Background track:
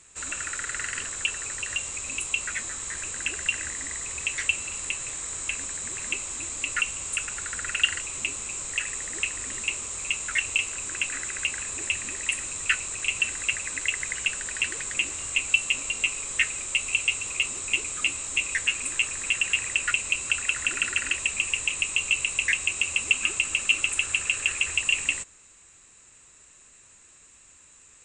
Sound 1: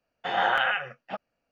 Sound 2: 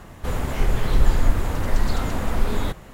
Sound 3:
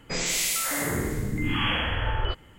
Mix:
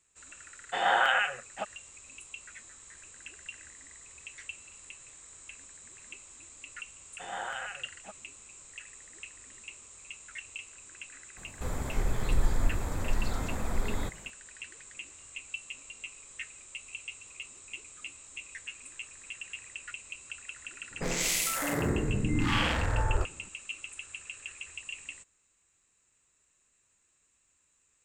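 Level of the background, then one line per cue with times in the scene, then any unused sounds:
background track -17.5 dB
0.48 s: add 1 -0.5 dB + high-pass 350 Hz 6 dB/octave
6.95 s: add 1 -13.5 dB
11.37 s: add 2 -9 dB + band-stop 2.8 kHz, Q 5.3
20.91 s: add 3 -0.5 dB + local Wiener filter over 15 samples

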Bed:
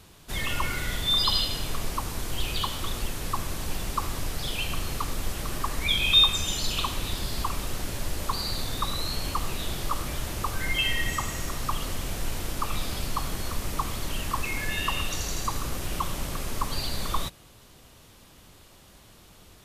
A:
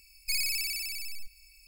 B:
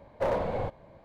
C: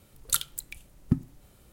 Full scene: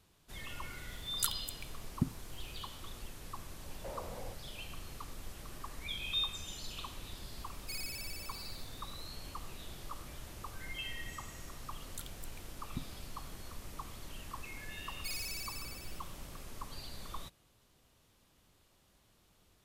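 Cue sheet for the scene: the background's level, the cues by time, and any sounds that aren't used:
bed -16 dB
0.90 s: add C -8 dB
3.64 s: add B -7 dB + compression, threshold -36 dBFS
7.40 s: add A -12.5 dB
11.65 s: add C -16.5 dB + peak limiter -11.5 dBFS
14.76 s: add A -11 dB

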